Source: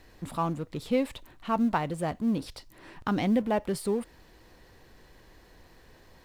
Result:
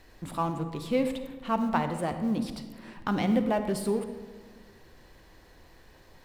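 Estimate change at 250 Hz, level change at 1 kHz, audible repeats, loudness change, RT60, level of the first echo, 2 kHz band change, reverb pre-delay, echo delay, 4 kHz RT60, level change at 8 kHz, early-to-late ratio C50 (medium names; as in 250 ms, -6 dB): 0.0 dB, +0.5 dB, no echo, 0.0 dB, 1.4 s, no echo, +0.5 dB, 39 ms, no echo, 0.80 s, +0.5 dB, 9.0 dB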